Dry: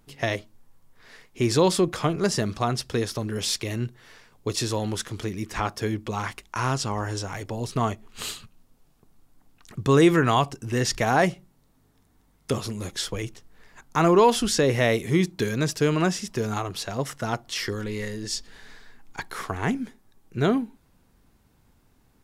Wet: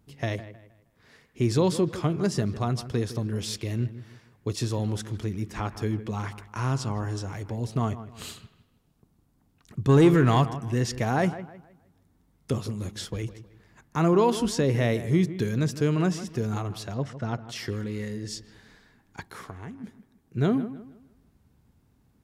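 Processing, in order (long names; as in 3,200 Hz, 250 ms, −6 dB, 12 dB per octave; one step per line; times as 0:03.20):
high-pass filter 60 Hz
low-shelf EQ 300 Hz +11 dB
0:09.89–0:10.50: leveller curve on the samples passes 1
0:16.94–0:17.48: high-frequency loss of the air 100 metres
0:19.20–0:19.84: downward compressor 10 to 1, threshold −30 dBFS, peak gain reduction 15.5 dB
delay with a low-pass on its return 157 ms, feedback 33%, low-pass 2,600 Hz, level −13.5 dB
level −7.5 dB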